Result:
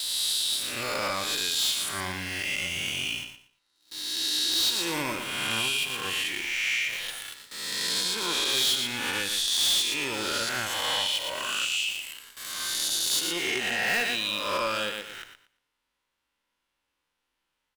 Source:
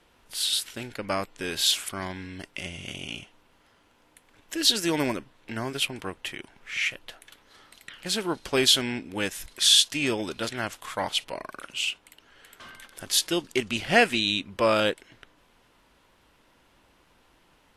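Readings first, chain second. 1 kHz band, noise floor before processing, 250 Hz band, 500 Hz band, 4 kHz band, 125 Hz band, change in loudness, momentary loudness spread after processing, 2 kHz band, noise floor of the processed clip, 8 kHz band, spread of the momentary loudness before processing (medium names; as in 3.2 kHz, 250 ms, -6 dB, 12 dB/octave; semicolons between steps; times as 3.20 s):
-1.0 dB, -63 dBFS, -7.5 dB, -6.5 dB, +0.5 dB, -5.5 dB, -0.5 dB, 10 LU, +2.0 dB, -81 dBFS, +1.5 dB, 18 LU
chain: reverse spectral sustain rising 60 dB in 1.36 s; tilt shelf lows -6 dB, about 910 Hz; band-stop 660 Hz, Q 12; in parallel at -9.5 dB: companded quantiser 2-bit; on the sum: gate with hold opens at -27 dBFS; on a send: feedback delay 117 ms, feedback 21%, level -10.5 dB; on the sum: compression 2.5:1, threshold -23 dBFS, peak gain reduction 13.5 dB; harmonic-percussive split percussive -8 dB; hard clipper -20.5 dBFS, distortion -12 dB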